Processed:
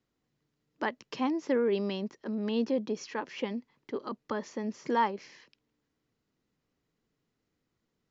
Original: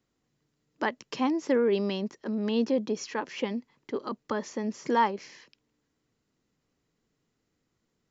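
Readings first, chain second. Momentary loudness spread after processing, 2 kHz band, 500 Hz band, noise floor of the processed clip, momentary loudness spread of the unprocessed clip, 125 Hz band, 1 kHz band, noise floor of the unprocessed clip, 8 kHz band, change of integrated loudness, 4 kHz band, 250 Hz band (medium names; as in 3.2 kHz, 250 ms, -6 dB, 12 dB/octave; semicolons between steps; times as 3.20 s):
10 LU, -3.0 dB, -3.0 dB, -82 dBFS, 10 LU, -3.0 dB, -3.0 dB, -79 dBFS, no reading, -3.0 dB, -3.5 dB, -3.0 dB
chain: low-pass 5.9 kHz 12 dB/octave; trim -3 dB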